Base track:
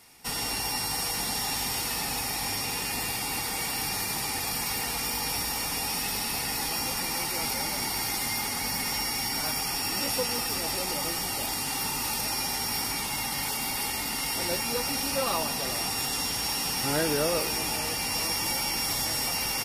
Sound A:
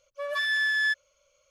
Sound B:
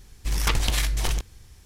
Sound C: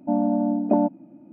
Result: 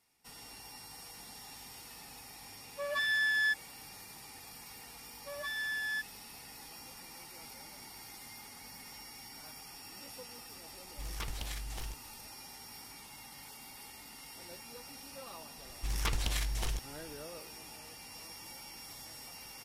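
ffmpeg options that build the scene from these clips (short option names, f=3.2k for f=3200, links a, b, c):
-filter_complex "[1:a]asplit=2[a][b];[2:a]asplit=2[c][d];[0:a]volume=-20dB[e];[a]atrim=end=1.5,asetpts=PTS-STARTPTS,volume=-4.5dB,afade=t=in:d=0.004:c=hsin,afade=t=out:st=1.496:d=0.004:c=hsin,adelay=2600[f];[b]atrim=end=1.5,asetpts=PTS-STARTPTS,volume=-11dB,afade=t=in:d=0.004:c=hsin,afade=t=out:st=1.496:d=0.004:c=hsin,adelay=5080[g];[c]atrim=end=1.65,asetpts=PTS-STARTPTS,volume=-17dB,afade=t=in:d=0.004:c=hsin,afade=t=out:st=1.646:d=0.004:c=hsin,adelay=10730[h];[d]atrim=end=1.65,asetpts=PTS-STARTPTS,volume=-10dB,afade=t=in:d=0.004:c=hsin,afade=t=out:st=1.646:d=0.004:c=hsin,adelay=15580[i];[e][f][g][h][i]amix=inputs=5:normalize=0"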